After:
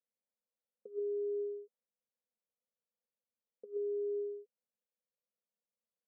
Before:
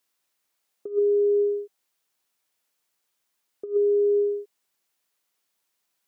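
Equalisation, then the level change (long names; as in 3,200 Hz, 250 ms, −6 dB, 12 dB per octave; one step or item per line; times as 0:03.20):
dynamic equaliser 350 Hz, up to +3 dB, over −31 dBFS, Q 1.3
pair of resonant band-passes 330 Hz, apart 1.2 octaves
−4.5 dB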